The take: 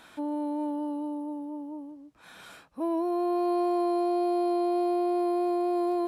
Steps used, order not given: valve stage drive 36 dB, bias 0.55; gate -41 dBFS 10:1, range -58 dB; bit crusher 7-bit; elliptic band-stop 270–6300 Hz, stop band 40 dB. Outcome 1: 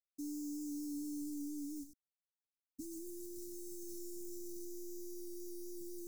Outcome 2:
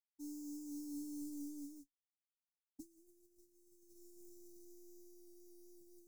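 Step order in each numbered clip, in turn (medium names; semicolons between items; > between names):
valve stage > bit crusher > gate > elliptic band-stop; valve stage > bit crusher > elliptic band-stop > gate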